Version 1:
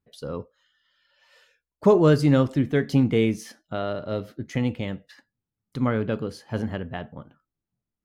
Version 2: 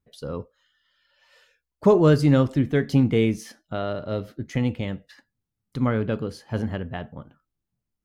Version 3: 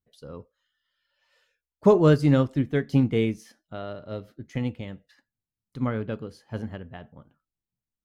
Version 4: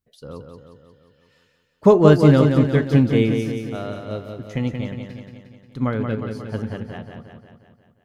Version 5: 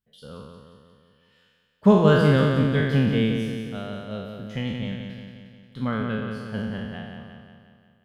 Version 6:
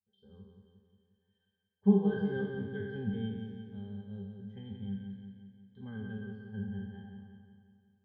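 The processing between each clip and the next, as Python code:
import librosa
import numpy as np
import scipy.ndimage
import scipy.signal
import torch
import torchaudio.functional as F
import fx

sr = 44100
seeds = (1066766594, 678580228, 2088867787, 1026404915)

y1 = fx.low_shelf(x, sr, hz=70.0, db=8.0)
y2 = fx.upward_expand(y1, sr, threshold_db=-31.0, expansion=1.5)
y3 = fx.echo_feedback(y2, sr, ms=178, feedback_pct=58, wet_db=-6.0)
y3 = y3 * 10.0 ** (4.5 / 20.0)
y4 = fx.spec_trails(y3, sr, decay_s=1.14)
y4 = fx.graphic_eq_31(y4, sr, hz=(200, 315, 1600, 3150, 6300), db=(8, -7, 6, 9, -5))
y4 = y4 * 10.0 ** (-7.0 / 20.0)
y5 = fx.octave_resonator(y4, sr, note='G', decay_s=0.16)
y5 = y5 * 10.0 ** (-3.5 / 20.0)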